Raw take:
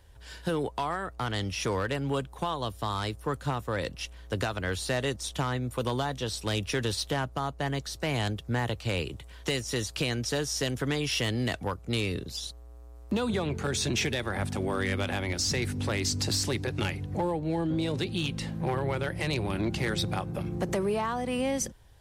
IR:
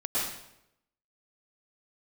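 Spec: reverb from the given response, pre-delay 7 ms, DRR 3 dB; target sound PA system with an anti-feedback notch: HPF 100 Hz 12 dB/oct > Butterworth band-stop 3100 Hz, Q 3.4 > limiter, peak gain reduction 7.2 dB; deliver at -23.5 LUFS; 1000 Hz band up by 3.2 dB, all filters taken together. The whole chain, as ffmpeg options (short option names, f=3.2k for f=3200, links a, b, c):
-filter_complex "[0:a]equalizer=f=1k:t=o:g=4,asplit=2[a][b];[1:a]atrim=start_sample=2205,adelay=7[c];[b][c]afir=irnorm=-1:irlink=0,volume=-11.5dB[d];[a][d]amix=inputs=2:normalize=0,highpass=100,asuperstop=centerf=3100:order=8:qfactor=3.4,volume=7.5dB,alimiter=limit=-13.5dB:level=0:latency=1"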